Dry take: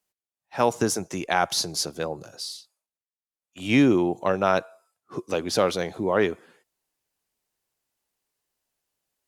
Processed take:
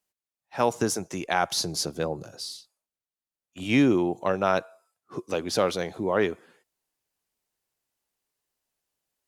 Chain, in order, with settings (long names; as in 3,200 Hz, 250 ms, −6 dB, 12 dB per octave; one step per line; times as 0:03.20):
0:01.64–0:03.64: low-shelf EQ 460 Hz +6 dB
level −2 dB